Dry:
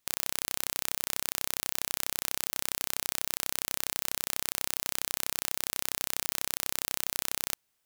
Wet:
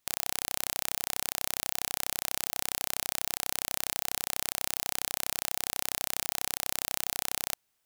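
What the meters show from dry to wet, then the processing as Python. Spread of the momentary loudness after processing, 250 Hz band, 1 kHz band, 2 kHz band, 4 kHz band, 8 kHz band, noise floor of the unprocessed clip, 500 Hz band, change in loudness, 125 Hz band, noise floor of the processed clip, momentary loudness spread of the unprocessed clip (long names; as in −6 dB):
0 LU, 0.0 dB, +1.0 dB, 0.0 dB, 0.0 dB, 0.0 dB, −77 dBFS, +0.5 dB, 0.0 dB, 0.0 dB, −77 dBFS, 0 LU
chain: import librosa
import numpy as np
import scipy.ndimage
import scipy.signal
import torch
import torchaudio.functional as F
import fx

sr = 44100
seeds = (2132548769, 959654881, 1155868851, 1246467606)

y = fx.peak_eq(x, sr, hz=760.0, db=2.5, octaves=0.33)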